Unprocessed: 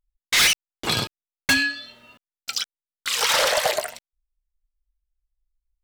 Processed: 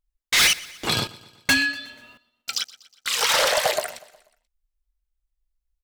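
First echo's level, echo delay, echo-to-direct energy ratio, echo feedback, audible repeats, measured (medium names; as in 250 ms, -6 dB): -20.5 dB, 121 ms, -19.0 dB, 54%, 3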